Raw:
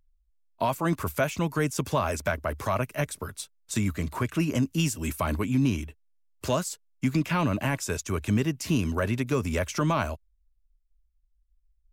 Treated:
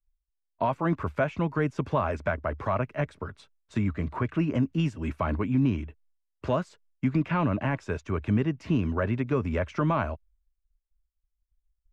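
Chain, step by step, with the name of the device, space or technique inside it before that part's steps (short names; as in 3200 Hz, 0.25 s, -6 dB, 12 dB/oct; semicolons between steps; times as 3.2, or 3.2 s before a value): hearing-loss simulation (LPF 2000 Hz 12 dB/oct; expander -58 dBFS)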